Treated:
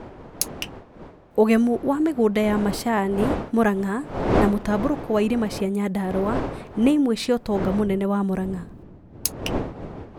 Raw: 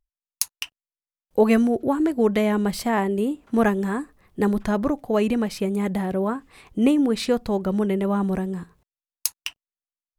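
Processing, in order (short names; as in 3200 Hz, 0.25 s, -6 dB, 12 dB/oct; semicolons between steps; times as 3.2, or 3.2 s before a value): wind noise 560 Hz -31 dBFS, from 7.8 s 250 Hz, from 9.26 s 420 Hz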